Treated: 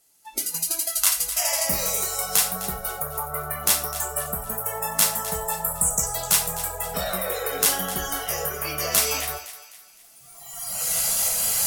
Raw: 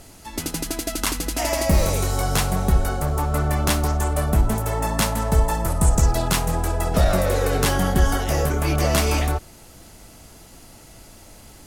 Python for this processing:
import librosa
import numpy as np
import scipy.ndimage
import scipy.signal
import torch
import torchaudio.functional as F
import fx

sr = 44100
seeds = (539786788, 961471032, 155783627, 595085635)

p1 = fx.recorder_agc(x, sr, target_db=-13.0, rise_db_per_s=13.0, max_gain_db=30)
p2 = fx.riaa(p1, sr, side='recording')
p3 = fx.noise_reduce_blind(p2, sr, reduce_db=20)
p4 = p3 + fx.echo_thinned(p3, sr, ms=256, feedback_pct=43, hz=780.0, wet_db=-13.5, dry=0)
p5 = fx.rev_gated(p4, sr, seeds[0], gate_ms=150, shape='falling', drr_db=6.0)
y = p5 * 10.0 ** (-6.0 / 20.0)